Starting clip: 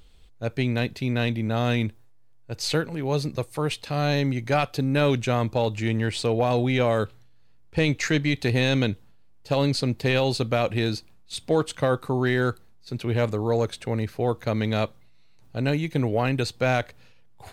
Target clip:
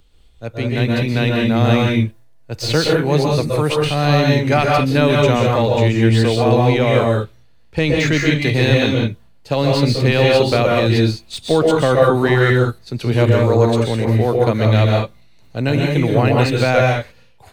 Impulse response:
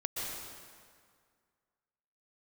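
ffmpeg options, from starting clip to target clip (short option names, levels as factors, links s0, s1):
-filter_complex "[0:a]acrossover=split=200|5100[s0][s1][s2];[s2]asoftclip=type=tanh:threshold=0.0106[s3];[s0][s1][s3]amix=inputs=3:normalize=0[s4];[1:a]atrim=start_sample=2205,afade=t=out:st=0.26:d=0.01,atrim=end_sample=11907[s5];[s4][s5]afir=irnorm=-1:irlink=0,dynaudnorm=f=310:g=5:m=3.76"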